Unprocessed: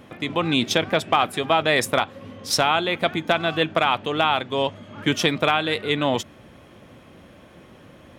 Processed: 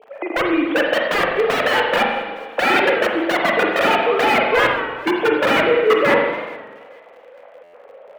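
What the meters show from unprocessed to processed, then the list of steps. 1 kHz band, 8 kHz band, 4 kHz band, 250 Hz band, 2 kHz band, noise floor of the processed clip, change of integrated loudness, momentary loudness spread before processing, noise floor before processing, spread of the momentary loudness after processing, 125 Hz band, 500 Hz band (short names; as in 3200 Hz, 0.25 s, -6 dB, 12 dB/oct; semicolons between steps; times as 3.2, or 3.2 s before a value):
+3.5 dB, -6.5 dB, -1.0 dB, +3.5 dB, +7.5 dB, -45 dBFS, +4.5 dB, 7 LU, -49 dBFS, 7 LU, -6.5 dB, +7.0 dB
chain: sine-wave speech; bell 650 Hz +12.5 dB 1.2 oct; wrapped overs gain 9.5 dB; crackle 47/s -29 dBFS; three-band isolator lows -15 dB, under 190 Hz, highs -23 dB, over 2600 Hz; thinning echo 0.429 s, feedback 41%, high-pass 780 Hz, level -23 dB; spring tank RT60 1.3 s, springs 39/48 ms, chirp 55 ms, DRR 0 dB; stuck buffer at 7.63, samples 512, times 8; record warp 33 1/3 rpm, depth 100 cents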